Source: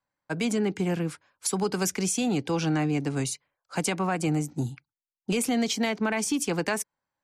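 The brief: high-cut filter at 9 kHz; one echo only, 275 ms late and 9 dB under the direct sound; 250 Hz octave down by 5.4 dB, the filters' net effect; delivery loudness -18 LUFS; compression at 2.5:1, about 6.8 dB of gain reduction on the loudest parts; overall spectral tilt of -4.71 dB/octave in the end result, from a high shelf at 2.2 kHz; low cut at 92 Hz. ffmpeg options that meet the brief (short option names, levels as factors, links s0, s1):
-af "highpass=92,lowpass=9000,equalizer=f=250:t=o:g=-7,highshelf=f=2200:g=-7,acompressor=threshold=0.0158:ratio=2.5,aecho=1:1:275:0.355,volume=10"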